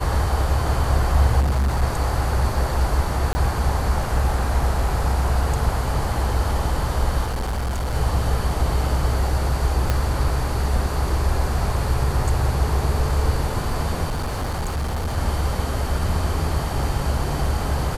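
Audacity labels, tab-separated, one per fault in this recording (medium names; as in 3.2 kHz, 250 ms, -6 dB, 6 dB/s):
1.400000	1.830000	clipped -16.5 dBFS
3.330000	3.350000	dropout 20 ms
7.240000	7.950000	clipped -21 dBFS
9.900000	9.900000	pop -7 dBFS
14.090000	15.180000	clipped -21 dBFS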